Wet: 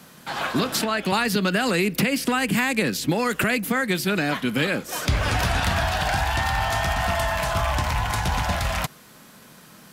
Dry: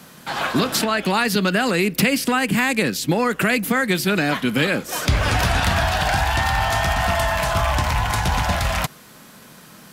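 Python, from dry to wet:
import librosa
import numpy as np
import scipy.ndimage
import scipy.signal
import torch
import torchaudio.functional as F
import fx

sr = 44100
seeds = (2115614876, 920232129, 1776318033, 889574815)

y = fx.band_squash(x, sr, depth_pct=100, at=(1.12, 3.44))
y = y * 10.0 ** (-3.5 / 20.0)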